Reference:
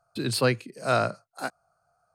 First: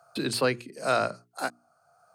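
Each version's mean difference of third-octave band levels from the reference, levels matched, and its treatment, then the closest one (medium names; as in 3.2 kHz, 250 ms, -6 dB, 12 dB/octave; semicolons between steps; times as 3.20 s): 2.5 dB: Bessel high-pass 190 Hz, order 2; hum notches 60/120/180/240/300/360/420 Hz; three bands compressed up and down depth 40%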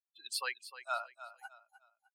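16.5 dB: expander on every frequency bin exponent 3; high-pass 820 Hz 24 dB/octave; feedback delay 305 ms, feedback 31%, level -13.5 dB; trim -5 dB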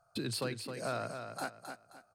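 8.0 dB: compression 5:1, threshold -35 dBFS, peak gain reduction 16 dB; overload inside the chain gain 27.5 dB; on a send: feedback delay 264 ms, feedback 31%, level -7 dB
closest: first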